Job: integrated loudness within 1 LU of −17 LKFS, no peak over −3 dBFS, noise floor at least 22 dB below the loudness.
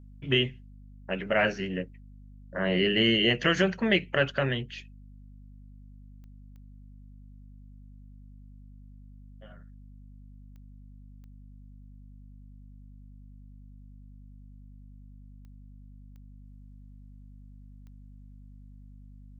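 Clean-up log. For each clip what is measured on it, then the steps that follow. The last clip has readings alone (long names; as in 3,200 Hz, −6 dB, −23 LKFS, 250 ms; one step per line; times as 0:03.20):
number of clicks 7; mains hum 50 Hz; hum harmonics up to 250 Hz; level of the hum −47 dBFS; integrated loudness −26.5 LKFS; sample peak −9.5 dBFS; target loudness −17.0 LKFS
→ click removal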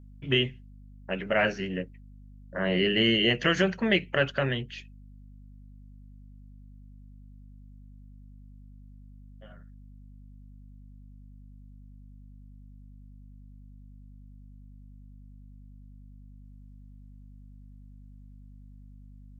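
number of clicks 0; mains hum 50 Hz; hum harmonics up to 250 Hz; level of the hum −47 dBFS
→ hum removal 50 Hz, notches 5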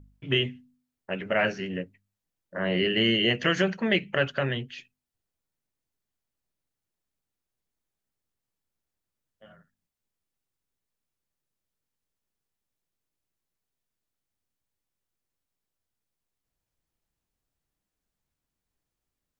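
mains hum none found; integrated loudness −26.5 LKFS; sample peak −10.0 dBFS; target loudness −17.0 LKFS
→ level +9.5 dB
brickwall limiter −3 dBFS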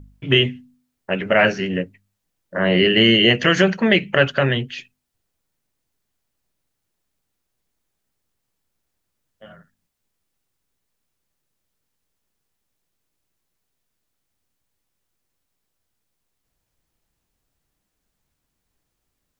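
integrated loudness −17.0 LKFS; sample peak −3.0 dBFS; background noise floor −77 dBFS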